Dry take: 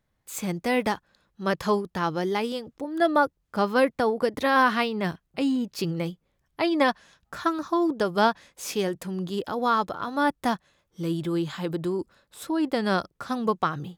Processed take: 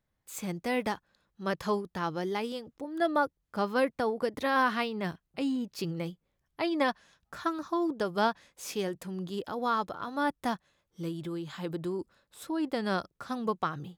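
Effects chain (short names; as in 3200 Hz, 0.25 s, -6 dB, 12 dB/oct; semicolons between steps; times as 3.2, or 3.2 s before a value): 11.08–11.63 compressor, threshold -27 dBFS, peak gain reduction 5 dB; gain -6 dB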